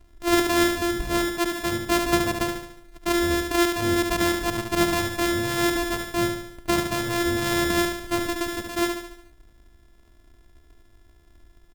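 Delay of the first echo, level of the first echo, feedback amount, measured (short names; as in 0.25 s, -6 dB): 72 ms, -5.5 dB, 51%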